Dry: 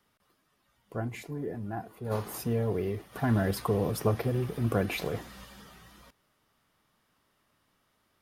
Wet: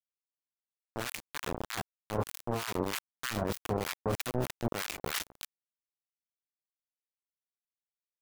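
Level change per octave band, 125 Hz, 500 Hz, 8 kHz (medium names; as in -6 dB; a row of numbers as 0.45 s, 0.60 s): -8.5 dB, -5.0 dB, +4.0 dB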